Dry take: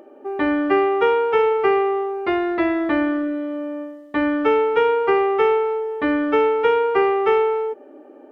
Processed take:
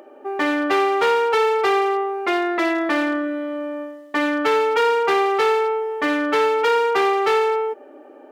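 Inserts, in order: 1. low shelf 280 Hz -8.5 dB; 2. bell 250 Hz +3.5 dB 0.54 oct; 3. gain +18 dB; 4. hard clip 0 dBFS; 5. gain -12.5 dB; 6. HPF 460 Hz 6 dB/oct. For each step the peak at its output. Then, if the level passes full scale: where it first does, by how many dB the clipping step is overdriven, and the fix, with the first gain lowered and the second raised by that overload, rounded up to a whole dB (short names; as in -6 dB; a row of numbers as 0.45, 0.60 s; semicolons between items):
-8.5, -8.5, +9.5, 0.0, -12.5, -8.0 dBFS; step 3, 9.5 dB; step 3 +8 dB, step 5 -2.5 dB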